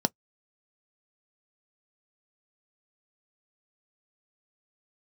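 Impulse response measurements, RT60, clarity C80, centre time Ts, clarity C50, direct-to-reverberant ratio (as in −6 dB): 0.10 s, 60.0 dB, 3 ms, 43.5 dB, 10.5 dB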